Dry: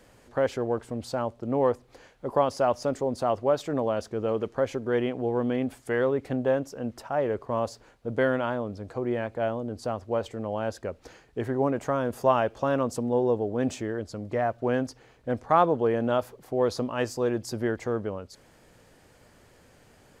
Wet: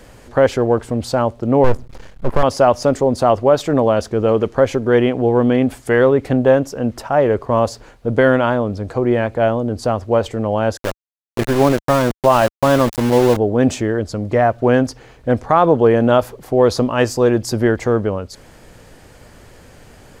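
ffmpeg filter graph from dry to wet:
-filter_complex "[0:a]asettb=1/sr,asplit=3[s0][s1][s2];[s0]atrim=end=1.644[s3];[s1]atrim=start=1.64:end=2.43,asetpts=PTS-STARTPTS,afade=t=in:d=0.004:c=qsin,afade=t=out:st=0.786:d=0.004:c=qsin,bass=f=250:g=12,treble=f=4000:g=0,aeval=exprs='max(val(0),0)':c=same[s4];[s2]atrim=start=2.426[s5];[s3][s4]acrossfade=d=0.004:c1=hsin:c2=qsin[s6];[s6][s5]acrossfade=d=0.004:c1=qsin:c2=hsin,asettb=1/sr,asplit=3[s7][s8][s9];[s7]atrim=end=10.774[s10];[s8]atrim=start=10.77:end=13.37,asetpts=PTS-STARTPTS,afade=t=in:d=0.004:c=qsin,afade=t=out:st=2.596:d=0.004:c=qsin,bandreject=f=450:w=8.3,aeval=exprs='val(0)*gte(abs(val(0)),0.0282)':c=same[s11];[s9]atrim=start=13.366[s12];[s10][s11]acrossfade=d=0.004:c1=hsin:c2=qsin[s13];[s13][s12]acrossfade=d=0.004:c1=qsin:c2=hsin,lowshelf=f=67:g=9,alimiter=level_in=4.47:limit=0.891:release=50:level=0:latency=1,volume=0.891"

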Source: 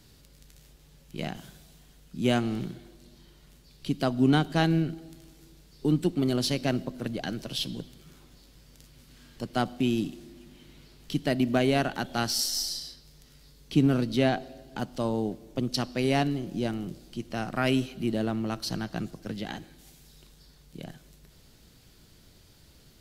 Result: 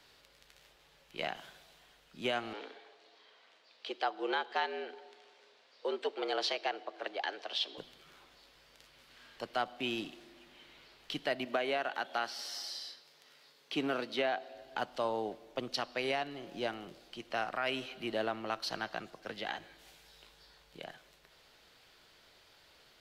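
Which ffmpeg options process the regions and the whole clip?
-filter_complex "[0:a]asettb=1/sr,asplit=3[s0][s1][s2];[s0]atrim=end=2.534[s3];[s1]atrim=start=2.53:end=7.78,asetpts=PTS-STARTPTS,afade=t=in:d=0.004:c=qsin,afade=t=out:st=5.246:d=0.004:c=qsin,afreqshift=85,highpass=490,lowpass=5200[s4];[s2]atrim=start=7.776[s5];[s3][s4]acrossfade=d=0.004:c1=hsin:c2=qsin[s6];[s6][s5]acrossfade=d=0.004:c1=qsin:c2=hsin,asettb=1/sr,asplit=3[s7][s8][s9];[s7]atrim=end=11.454[s10];[s8]atrim=start=11.45:end=14.54,asetpts=PTS-STARTPTS,afade=t=in:d=0.004:c=qsin,afade=t=out:st=3.086:d=0.004:c=qsin,highpass=190,acrossover=split=3000[s11][s12];[s12]acompressor=threshold=0.0158:ratio=4:attack=1:release=60[s13];[s11][s13]amix=inputs=2:normalize=0[s14];[s9]atrim=start=14.536[s15];[s10][s14]acrossfade=d=0.004:c1=hsin:c2=qsin[s16];[s16][s15]acrossfade=d=0.004:c1=qsin:c2=hsin,asettb=1/sr,asplit=3[s17][s18][s19];[s17]atrim=end=19.584[s20];[s18]atrim=start=19.58:end=20.79,asetpts=PTS-STARTPTS,afade=t=in:d=0.004:c=qsin,afade=t=out:st=1.206:d=0.004:c=qsin,equalizer=f=82:t=o:w=2:g=4,asplit=2[s21][s22];[s22]adelay=18,volume=0.531[s23];[s21][s23]amix=inputs=2:normalize=0,atrim=end_sample=53361[s24];[s19]atrim=start=20.786[s25];[s20][s24]acrossfade=d=0.004:c1=hsin:c2=qsin[s26];[s26][s25]acrossfade=d=0.004:c1=qsin:c2=hsin,acrossover=split=490 4100:gain=0.0794 1 0.2[s27][s28][s29];[s27][s28][s29]amix=inputs=3:normalize=0,alimiter=level_in=1.06:limit=0.0631:level=0:latency=1:release=319,volume=0.944,volume=1.41"

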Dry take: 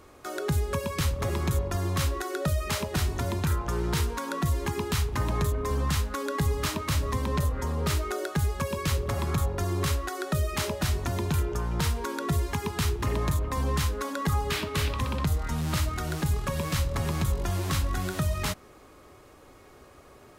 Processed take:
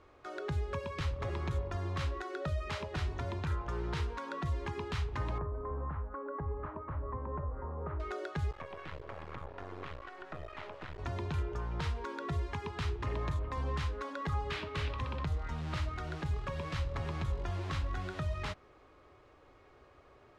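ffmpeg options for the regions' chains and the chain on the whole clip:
-filter_complex "[0:a]asettb=1/sr,asplit=3[s0][s1][s2];[s0]atrim=end=5.384[s3];[s1]atrim=start=5.38:end=8,asetpts=PTS-STARTPTS,afade=t=in:d=0.004:c=qsin,afade=t=out:st=2.616:d=0.004:c=qsin,lowpass=f=1300:w=0.5412,lowpass=f=1300:w=1.3066,equalizer=f=120:w=0.59:g=-5[s4];[s2]atrim=start=7.996[s5];[s3][s4]acrossfade=d=0.004:c1=hsin:c2=qsin[s6];[s6][s5]acrossfade=d=0.004:c1=qsin:c2=hsin,asettb=1/sr,asplit=3[s7][s8][s9];[s7]atrim=end=8.514[s10];[s8]atrim=start=8.51:end=10.99,asetpts=PTS-STARTPTS,afade=t=in:d=0.004:c=qsin,afade=t=out:st=2.476:d=0.004:c=qsin,aeval=exprs='max(val(0),0)':c=same,acrossover=split=3000[s11][s12];[s12]acompressor=threshold=0.00251:ratio=4:attack=1:release=60[s13];[s11][s13]amix=inputs=2:normalize=0,lowshelf=f=210:g=-10[s14];[s9]atrim=start=10.986[s15];[s10][s14]acrossfade=d=0.004:c1=hsin:c2=qsin[s16];[s16][s15]acrossfade=d=0.004:c1=qsin:c2=hsin,lowpass=3500,equalizer=f=210:w=1.6:g=-6.5,volume=0.447"

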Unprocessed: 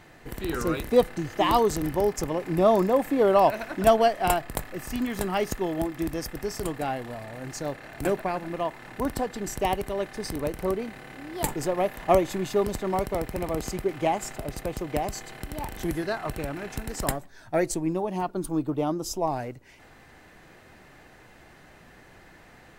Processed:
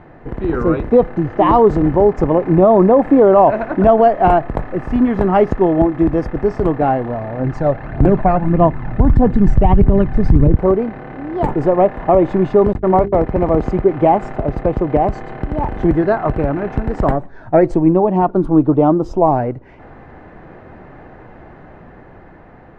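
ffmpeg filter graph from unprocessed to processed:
-filter_complex "[0:a]asettb=1/sr,asplit=3[s0][s1][s2];[s0]atrim=end=7.394[s3];[s1]atrim=start=7.39:end=10.56,asetpts=PTS-STARTPTS,afade=t=in:d=0.004:c=qsin,afade=t=out:st=3.166:d=0.004:c=qsin,asubboost=boost=7.5:cutoff=230,aphaser=in_gain=1:out_gain=1:delay=1.7:decay=0.44:speed=1.6:type=triangular[s4];[s2]atrim=start=10.556[s5];[s3][s4]acrossfade=d=0.004:c1=hsin:c2=qsin[s6];[s6][s5]acrossfade=d=0.004:c1=qsin:c2=hsin,asettb=1/sr,asplit=3[s7][s8][s9];[s7]atrim=end=12.734[s10];[s8]atrim=start=12.73:end=13.26,asetpts=PTS-STARTPTS,afade=t=in:d=0.004:c=qsin,afade=t=out:st=0.526:d=0.004:c=qsin,agate=range=0.0112:threshold=0.0251:ratio=16:release=100:detection=peak,bandreject=f=50:t=h:w=6,bandreject=f=100:t=h:w=6,bandreject=f=150:t=h:w=6,bandreject=f=200:t=h:w=6,bandreject=f=250:t=h:w=6,bandreject=f=300:t=h:w=6,bandreject=f=350:t=h:w=6,bandreject=f=400:t=h:w=6,bandreject=f=450:t=h:w=6[s11];[s9]atrim=start=13.256[s12];[s10][s11]acrossfade=d=0.004:c1=hsin:c2=qsin[s13];[s13][s12]acrossfade=d=0.004:c1=qsin:c2=hsin,lowpass=1100,dynaudnorm=f=330:g=9:m=1.5,alimiter=level_in=4.47:limit=0.891:release=50:level=0:latency=1,volume=0.891"

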